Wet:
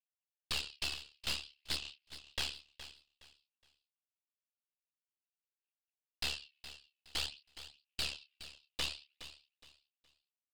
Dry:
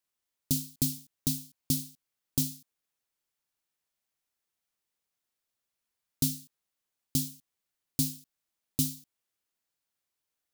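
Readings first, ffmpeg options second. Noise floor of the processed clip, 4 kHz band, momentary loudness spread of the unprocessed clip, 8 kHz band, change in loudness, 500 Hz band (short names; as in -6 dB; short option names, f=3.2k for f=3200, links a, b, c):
under -85 dBFS, +3.5 dB, 10 LU, -12.5 dB, -8.0 dB, -1.5 dB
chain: -filter_complex "[0:a]highpass=f=2.7k:t=q:w=9.6,aphaser=in_gain=1:out_gain=1:delay=2.7:decay=0.66:speed=0.53:type=sinusoidal,alimiter=limit=-14dB:level=0:latency=1:release=354,asplit=2[a][b];[b]adelay=28,volume=-8dB[c];[a][c]amix=inputs=2:normalize=0,aeval=exprs='val(0)*sin(2*PI*36*n/s)':c=same,acontrast=84,agate=range=-33dB:threshold=-54dB:ratio=3:detection=peak,aresample=11025,aeval=exprs='0.0631*(abs(mod(val(0)/0.0631+3,4)-2)-1)':c=same,aresample=44100,aeval=exprs='(tanh(39.8*val(0)+0.8)-tanh(0.8))/39.8':c=same,aecho=1:1:417|834|1251:0.211|0.0592|0.0166,volume=1.5dB"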